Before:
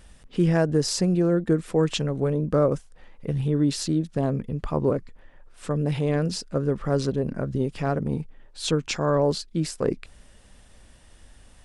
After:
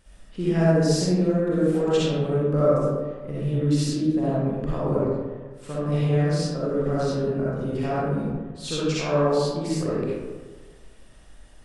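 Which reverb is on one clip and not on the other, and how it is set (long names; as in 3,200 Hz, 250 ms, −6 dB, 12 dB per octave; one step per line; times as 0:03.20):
comb and all-pass reverb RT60 1.4 s, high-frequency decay 0.45×, pre-delay 20 ms, DRR −9 dB
level −8.5 dB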